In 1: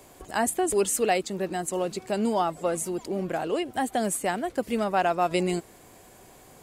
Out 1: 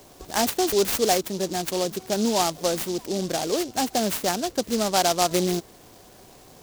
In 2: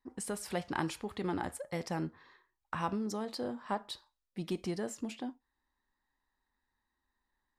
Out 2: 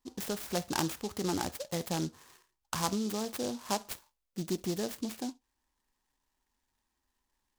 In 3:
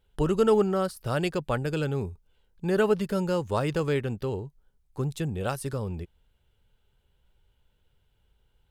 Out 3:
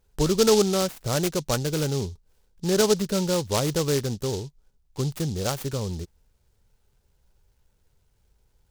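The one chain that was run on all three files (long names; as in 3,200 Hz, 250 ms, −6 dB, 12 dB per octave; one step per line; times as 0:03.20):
short delay modulated by noise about 4,900 Hz, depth 0.11 ms
level +2.5 dB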